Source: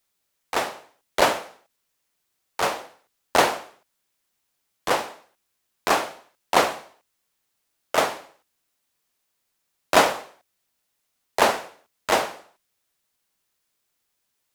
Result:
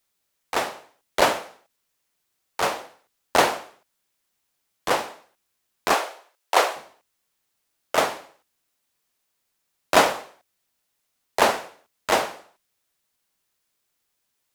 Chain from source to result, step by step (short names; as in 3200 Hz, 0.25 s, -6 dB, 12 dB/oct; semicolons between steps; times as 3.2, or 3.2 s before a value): 5.94–6.76 HPF 390 Hz 24 dB/oct